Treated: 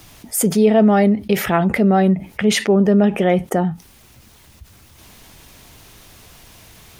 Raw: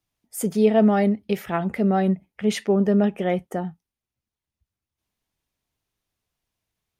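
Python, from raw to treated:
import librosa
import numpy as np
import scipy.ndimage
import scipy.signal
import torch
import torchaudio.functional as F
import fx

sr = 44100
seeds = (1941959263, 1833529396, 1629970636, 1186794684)

y = fx.env_flatten(x, sr, amount_pct=50)
y = F.gain(torch.from_numpy(y), 3.0).numpy()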